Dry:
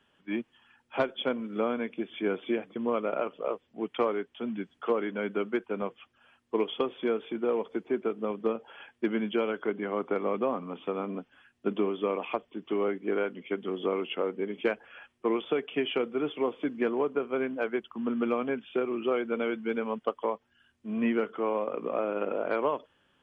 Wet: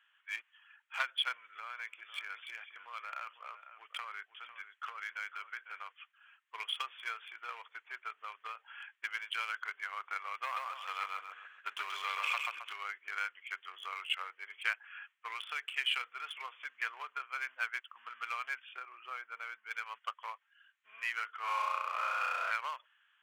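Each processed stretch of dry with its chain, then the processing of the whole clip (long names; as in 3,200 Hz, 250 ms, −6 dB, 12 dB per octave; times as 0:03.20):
0:01.37–0:05.87: downward compressor 10 to 1, threshold −28 dBFS + single-tap delay 500 ms −12 dB
0:10.43–0:12.73: repeating echo 133 ms, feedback 39%, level −3 dB + leveller curve on the samples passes 1
0:18.73–0:19.71: low-pass filter 1,000 Hz 6 dB per octave + floating-point word with a short mantissa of 8 bits
0:21.40–0:22.51: parametric band 1,000 Hz +3.5 dB 1.3 octaves + flutter between parallel walls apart 5.7 metres, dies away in 1.4 s
whole clip: adaptive Wiener filter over 9 samples; high-pass filter 1,400 Hz 24 dB per octave; level +4.5 dB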